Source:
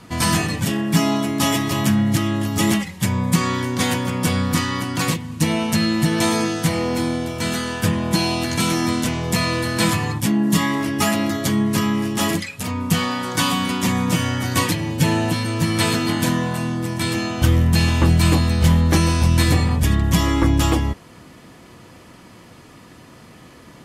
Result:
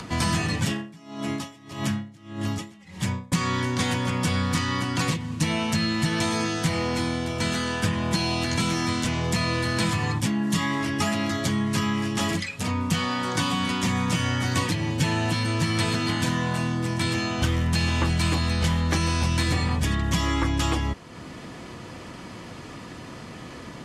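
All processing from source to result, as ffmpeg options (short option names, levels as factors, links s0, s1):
-filter_complex "[0:a]asettb=1/sr,asplit=3[s0][s1][s2];[s0]atrim=end=0.724[s3];[s1]atrim=start=0.72:end=3.32,asetpts=PTS-STARTPTS,afade=t=in:d=0.004:c=qsin,afade=t=out:st=2.596:d=0.004:c=qsin,acompressor=threshold=0.0891:ratio=2:attack=3.2:release=140:knee=1:detection=peak,aeval=exprs='val(0)*pow(10,-30*(0.5-0.5*cos(2*PI*1.7*n/s))/20)':c=same[s4];[s2]atrim=start=3.316[s5];[s3][s4]acrossfade=d=0.004:c1=hsin:c2=qsin[s6];[s6][s5]acrossfade=d=0.004:c1=qsin:c2=hsin,acrossover=split=140|880[s7][s8][s9];[s7]acompressor=threshold=0.0501:ratio=4[s10];[s8]acompressor=threshold=0.0398:ratio=4[s11];[s9]acompressor=threshold=0.0501:ratio=4[s12];[s10][s11][s12]amix=inputs=3:normalize=0,lowpass=7900,acompressor=mode=upward:threshold=0.0251:ratio=2.5"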